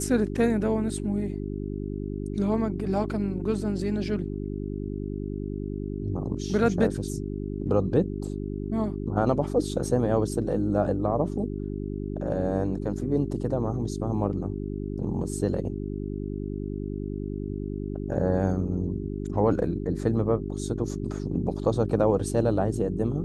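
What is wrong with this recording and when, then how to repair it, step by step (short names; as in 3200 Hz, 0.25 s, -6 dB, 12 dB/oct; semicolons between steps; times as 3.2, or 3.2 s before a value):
hum 50 Hz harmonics 8 -32 dBFS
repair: de-hum 50 Hz, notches 8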